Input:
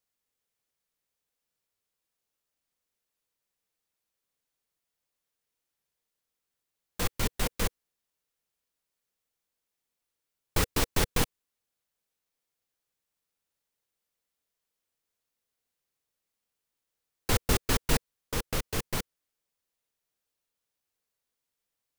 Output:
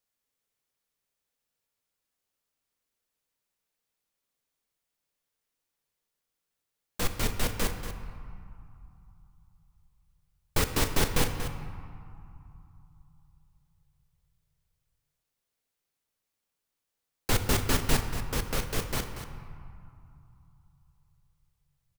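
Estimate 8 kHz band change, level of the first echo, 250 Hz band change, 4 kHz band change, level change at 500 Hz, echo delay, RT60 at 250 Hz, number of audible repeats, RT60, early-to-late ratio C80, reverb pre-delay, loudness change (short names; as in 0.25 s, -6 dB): +0.5 dB, -11.0 dB, +1.5 dB, +0.5 dB, +1.0 dB, 0.236 s, 3.3 s, 1, 2.8 s, 7.0 dB, 3 ms, +0.5 dB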